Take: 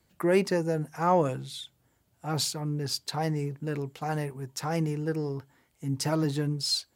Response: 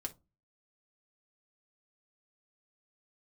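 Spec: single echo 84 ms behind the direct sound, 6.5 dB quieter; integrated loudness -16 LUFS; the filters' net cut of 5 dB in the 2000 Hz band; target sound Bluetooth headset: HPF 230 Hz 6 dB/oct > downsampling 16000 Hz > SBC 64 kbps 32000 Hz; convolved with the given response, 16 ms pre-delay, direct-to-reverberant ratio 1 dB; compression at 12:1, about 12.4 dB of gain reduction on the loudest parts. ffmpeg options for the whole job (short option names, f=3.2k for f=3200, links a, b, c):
-filter_complex "[0:a]equalizer=f=2k:t=o:g=-6.5,acompressor=threshold=-31dB:ratio=12,aecho=1:1:84:0.473,asplit=2[a][b];[1:a]atrim=start_sample=2205,adelay=16[c];[b][c]afir=irnorm=-1:irlink=0,volume=0.5dB[d];[a][d]amix=inputs=2:normalize=0,highpass=f=230:p=1,aresample=16000,aresample=44100,volume=18.5dB" -ar 32000 -c:a sbc -b:a 64k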